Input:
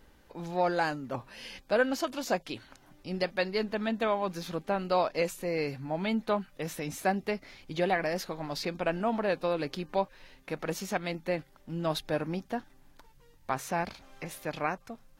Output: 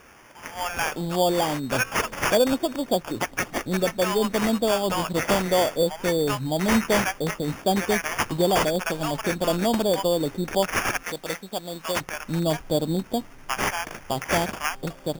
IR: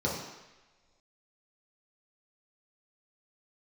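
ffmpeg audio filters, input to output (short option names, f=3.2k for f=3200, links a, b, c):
-filter_complex "[0:a]acrossover=split=1900[a][b];[a]adynamicsmooth=sensitivity=7:basefreq=1.2k[c];[c][b]amix=inputs=2:normalize=0,aexciter=amount=3.1:drive=6:freq=5.1k,asplit=2[d][e];[e]acompressor=threshold=-37dB:ratio=6,volume=-1.5dB[f];[d][f]amix=inputs=2:normalize=0,acrossover=split=920[g][h];[g]adelay=610[i];[i][h]amix=inputs=2:normalize=0,acrusher=samples=11:mix=1:aa=0.000001,asettb=1/sr,asplit=3[j][k][l];[j]atrim=end=11.034[m];[k]atrim=start=11.03:end=12.01,asetpts=PTS-STARTPTS,afade=t=in:d=0.004:c=qsin,afade=t=out:st=0.976:d=0.004:c=qsin,lowshelf=f=500:g=-12[n];[l]atrim=start=12.006[o];[m][n]acrossfade=d=0.004:c1=hsin:c2=qsin[p];[p][o]acrossfade=d=0.004:c1=qsin:c2=hsin,volume=6.5dB"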